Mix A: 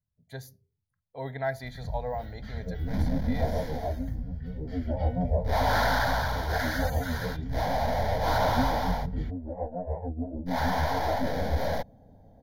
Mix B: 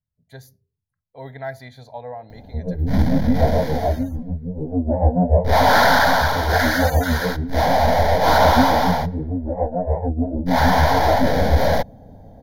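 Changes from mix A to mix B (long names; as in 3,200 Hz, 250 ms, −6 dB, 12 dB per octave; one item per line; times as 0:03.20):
first sound: muted
second sound +11.5 dB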